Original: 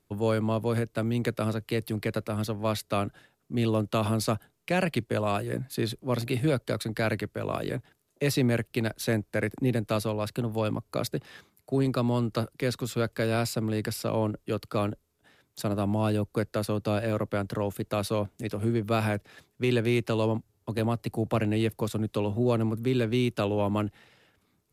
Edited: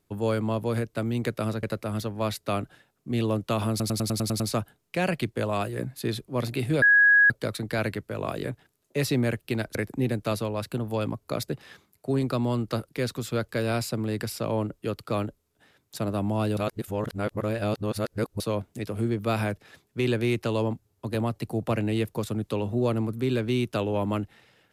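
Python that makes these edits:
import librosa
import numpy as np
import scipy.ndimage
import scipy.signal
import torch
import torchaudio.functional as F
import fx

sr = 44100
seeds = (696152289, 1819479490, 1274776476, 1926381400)

y = fx.edit(x, sr, fx.cut(start_s=1.63, length_s=0.44),
    fx.stutter(start_s=4.14, slice_s=0.1, count=8),
    fx.insert_tone(at_s=6.56, length_s=0.48, hz=1660.0, db=-14.0),
    fx.cut(start_s=9.01, length_s=0.38),
    fx.reverse_span(start_s=16.21, length_s=1.83), tone=tone)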